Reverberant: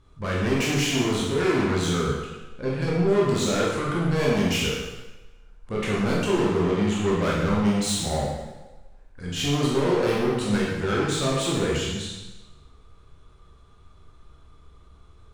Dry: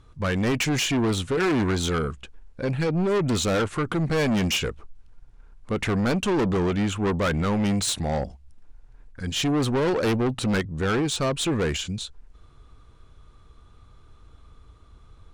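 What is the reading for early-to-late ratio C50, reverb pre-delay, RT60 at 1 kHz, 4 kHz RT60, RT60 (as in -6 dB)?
0.0 dB, 15 ms, 1.2 s, 1.0 s, 1.2 s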